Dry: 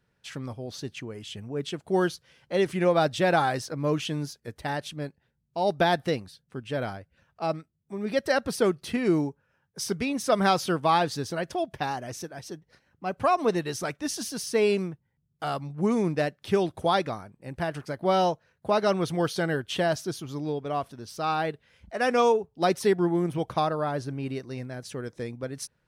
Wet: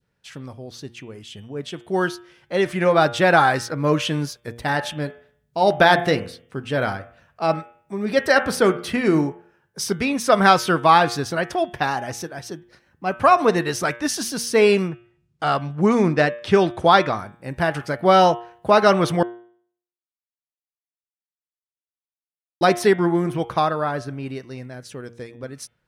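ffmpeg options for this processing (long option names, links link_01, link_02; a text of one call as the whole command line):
ffmpeg -i in.wav -filter_complex "[0:a]asettb=1/sr,asplit=3[link_01][link_02][link_03];[link_01]atrim=end=4.614[link_04];[link_02]atrim=start=4.61:end=9.85,asetpts=PTS-STARTPTS,afade=type=in:duration=0.004:curve=qsin,afade=type=out:start_time=5.236:duration=0.004:curve=qsin,bandreject=frequency=85.7:width_type=h:width=4,bandreject=frequency=171.4:width_type=h:width=4,bandreject=frequency=257.1:width_type=h:width=4,bandreject=frequency=342.8:width_type=h:width=4,bandreject=frequency=428.5:width_type=h:width=4,bandreject=frequency=514.2:width_type=h:width=4,bandreject=frequency=599.9:width_type=h:width=4,bandreject=frequency=685.6:width_type=h:width=4,bandreject=frequency=771.3:width_type=h:width=4,bandreject=frequency=857:width_type=h:width=4,bandreject=frequency=942.7:width_type=h:width=4,bandreject=frequency=1028.4:width_type=h:width=4,bandreject=frequency=1114.1:width_type=h:width=4,bandreject=frequency=1199.8:width_type=h:width=4,bandreject=frequency=1285.5:width_type=h:width=4,bandreject=frequency=1371.2:width_type=h:width=4,bandreject=frequency=1456.9:width_type=h:width=4,bandreject=frequency=1542.6:width_type=h:width=4,bandreject=frequency=1628.3:width_type=h:width=4,bandreject=frequency=1714:width_type=h:width=4,bandreject=frequency=1799.7:width_type=h:width=4,bandreject=frequency=1885.4:width_type=h:width=4,bandreject=frequency=1971.1:width_type=h:width=4,bandreject=frequency=2056.8:width_type=h:width=4,bandreject=frequency=2142.5:width_type=h:width=4,bandreject=frequency=2228.2:width_type=h:width=4,bandreject=frequency=2313.9:width_type=h:width=4,bandreject=frequency=2399.6:width_type=h:width=4,bandreject=frequency=2485.3:width_type=h:width=4,bandreject=frequency=2571:width_type=h:width=4,bandreject=frequency=2656.7:width_type=h:width=4,bandreject=frequency=2742.4:width_type=h:width=4,bandreject=frequency=2828.1:width_type=h:width=4,bandreject=frequency=2913.8:width_type=h:width=4,bandreject=frequency=2999.5:width_type=h:width=4,bandreject=frequency=3085.2:width_type=h:width=4,bandreject=frequency=3170.9:width_type=h:width=4[link_05];[link_03]atrim=start=9.846[link_06];[link_04][link_05]acrossfade=duration=0.004:curve1=hsin:curve2=qsin[link_07];[link_07][link_06]acrossfade=duration=0.004:curve1=qsin:curve2=hsin,asettb=1/sr,asplit=3[link_08][link_09][link_10];[link_08]atrim=end=14.884[link_11];[link_09]atrim=start=14.88:end=17.19,asetpts=PTS-STARTPTS,afade=type=in:duration=0.004:curve=qsin,afade=type=out:start_time=2.306:duration=0.004:curve=qsin,lowpass=7500[link_12];[link_10]atrim=start=17.186[link_13];[link_11][link_12]acrossfade=duration=0.004:curve1=hsin:curve2=qsin[link_14];[link_14][link_13]acrossfade=duration=0.004:curve1=qsin:curve2=hsin,asplit=3[link_15][link_16][link_17];[link_15]atrim=end=19.23,asetpts=PTS-STARTPTS,afade=type=out:start_time=19.226:duration=0.004:curve=hsin[link_18];[link_16]atrim=start=19.23:end=22.61,asetpts=PTS-STARTPTS,volume=0[link_19];[link_17]atrim=start=22.61,asetpts=PTS-STARTPTS,afade=type=in:duration=0.004:curve=hsin[link_20];[link_18][link_19][link_20]concat=n=3:v=0:a=1,bandreject=frequency=117.8:width_type=h:width=4,bandreject=frequency=235.6:width_type=h:width=4,bandreject=frequency=353.4:width_type=h:width=4,bandreject=frequency=471.2:width_type=h:width=4,bandreject=frequency=589:width_type=h:width=4,bandreject=frequency=706.8:width_type=h:width=4,bandreject=frequency=824.6:width_type=h:width=4,bandreject=frequency=942.4:width_type=h:width=4,bandreject=frequency=1060.2:width_type=h:width=4,bandreject=frequency=1178:width_type=h:width=4,bandreject=frequency=1295.8:width_type=h:width=4,bandreject=frequency=1413.6:width_type=h:width=4,bandreject=frequency=1531.4:width_type=h:width=4,bandreject=frequency=1649.2:width_type=h:width=4,bandreject=frequency=1767:width_type=h:width=4,bandreject=frequency=1884.8:width_type=h:width=4,bandreject=frequency=2002.6:width_type=h:width=4,bandreject=frequency=2120.4:width_type=h:width=4,bandreject=frequency=2238.2:width_type=h:width=4,bandreject=frequency=2356:width_type=h:width=4,bandreject=frequency=2473.8:width_type=h:width=4,bandreject=frequency=2591.6:width_type=h:width=4,bandreject=frequency=2709.4:width_type=h:width=4,bandreject=frequency=2827.2:width_type=h:width=4,bandreject=frequency=2945:width_type=h:width=4,bandreject=frequency=3062.8:width_type=h:width=4,bandreject=frequency=3180.6:width_type=h:width=4,bandreject=frequency=3298.4:width_type=h:width=4,bandreject=frequency=3416.2:width_type=h:width=4,bandreject=frequency=3534:width_type=h:width=4,bandreject=frequency=3651.8:width_type=h:width=4,adynamicequalizer=threshold=0.01:dfrequency=1500:dqfactor=0.92:tfrequency=1500:tqfactor=0.92:attack=5:release=100:ratio=0.375:range=3:mode=boostabove:tftype=bell,dynaudnorm=framelen=190:gausssize=31:maxgain=11.5dB" out.wav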